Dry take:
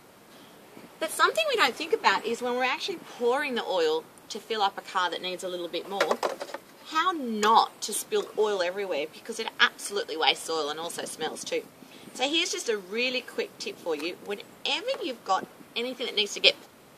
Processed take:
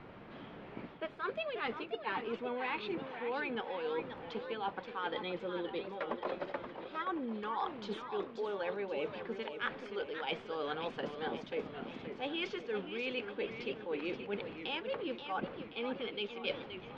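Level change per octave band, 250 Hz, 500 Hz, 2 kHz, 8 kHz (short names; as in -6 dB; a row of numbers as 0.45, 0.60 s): -5.5 dB, -9.0 dB, -11.5 dB, under -35 dB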